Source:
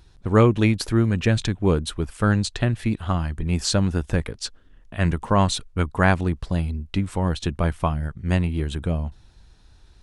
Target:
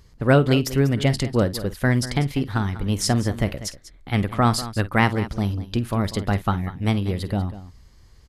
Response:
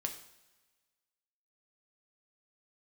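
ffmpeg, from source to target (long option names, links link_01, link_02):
-af "aecho=1:1:60|234:0.158|0.188,asetrate=53361,aresample=44100"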